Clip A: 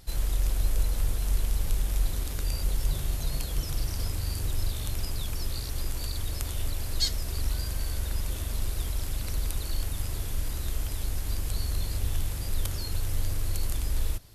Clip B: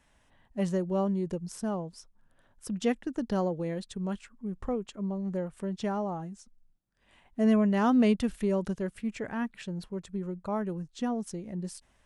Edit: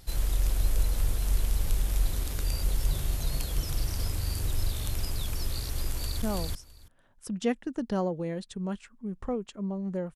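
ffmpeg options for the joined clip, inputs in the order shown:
ffmpeg -i cue0.wav -i cue1.wav -filter_complex "[0:a]apad=whole_dur=10.15,atrim=end=10.15,atrim=end=6.222[link_01];[1:a]atrim=start=1.618:end=5.55[link_02];[link_01][link_02]acrossfade=duration=0.004:curve1=hsin:curve2=hsin,asplit=2[link_03][link_04];[link_04]afade=type=in:start_time=5.89:duration=0.01,afade=type=out:start_time=6.22:duration=0.01,aecho=0:1:330|660:0.891251|0.0891251[link_05];[link_03][link_05]amix=inputs=2:normalize=0" out.wav

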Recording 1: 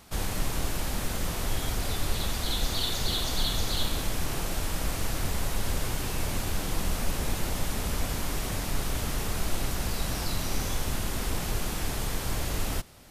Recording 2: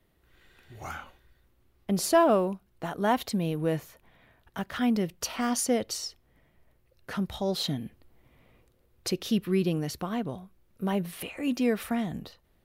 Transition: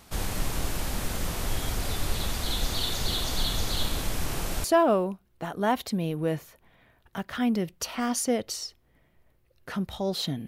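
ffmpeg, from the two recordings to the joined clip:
ffmpeg -i cue0.wav -i cue1.wav -filter_complex "[0:a]apad=whole_dur=10.47,atrim=end=10.47,atrim=end=4.642[link_01];[1:a]atrim=start=2.048:end=7.88[link_02];[link_01][link_02]acrossfade=duration=0.004:curve1=hsin:curve2=hsin" out.wav

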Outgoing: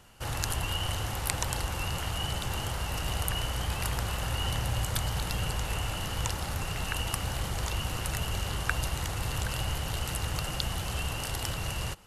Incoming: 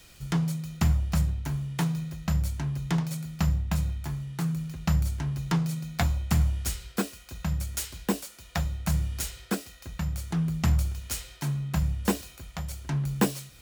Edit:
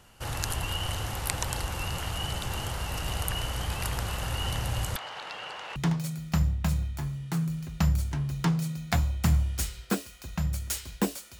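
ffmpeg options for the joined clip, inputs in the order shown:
ffmpeg -i cue0.wav -i cue1.wav -filter_complex "[0:a]asettb=1/sr,asplit=3[link_01][link_02][link_03];[link_01]atrim=end=4.964[link_04];[link_02]atrim=start=4.96:end=5.76,asetpts=PTS-STARTPTS,afade=type=in:duration=0.004:curve=qsin,afade=type=out:start_time=0.796:duration=0.004:curve=qsin,highpass=590,lowpass=3300[link_05];[link_03]atrim=start=5.756[link_06];[link_04][link_05]acrossfade=duration=0.004:curve1=hsin:curve2=qsin[link_07];[link_07][link_06]acrossfade=duration=0.004:curve1=qsin:curve2=hsin,apad=whole_dur=11.39,atrim=end=11.39,atrim=end=5.762[link_08];[1:a]atrim=start=2.828:end=8.46[link_09];[link_08][link_09]acrossfade=duration=0.004:curve1=hsin:curve2=hsin" out.wav

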